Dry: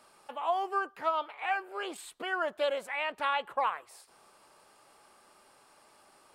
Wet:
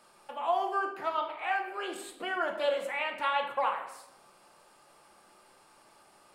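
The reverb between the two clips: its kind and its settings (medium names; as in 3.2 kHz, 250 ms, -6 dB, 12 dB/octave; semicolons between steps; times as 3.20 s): simulated room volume 310 m³, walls mixed, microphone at 0.84 m; trim -1 dB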